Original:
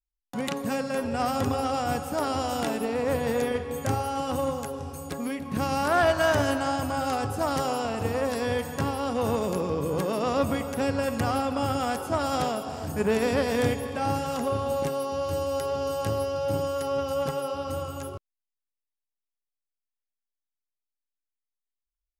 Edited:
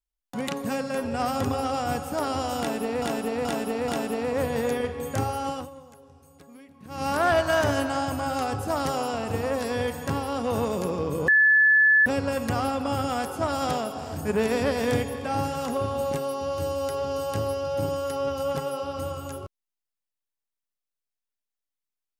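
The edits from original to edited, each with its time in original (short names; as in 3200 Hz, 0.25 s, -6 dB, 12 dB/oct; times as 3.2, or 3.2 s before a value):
2.59–3.02 loop, 4 plays
4.21–5.79 dip -17 dB, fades 0.19 s
9.99–10.77 bleep 1730 Hz -14.5 dBFS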